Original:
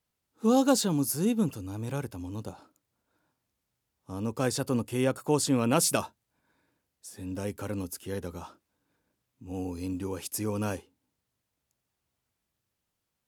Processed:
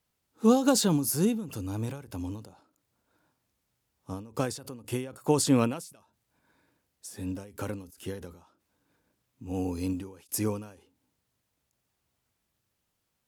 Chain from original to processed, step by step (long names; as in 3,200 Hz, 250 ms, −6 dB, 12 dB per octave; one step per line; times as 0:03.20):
every ending faded ahead of time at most 100 dB per second
level +3.5 dB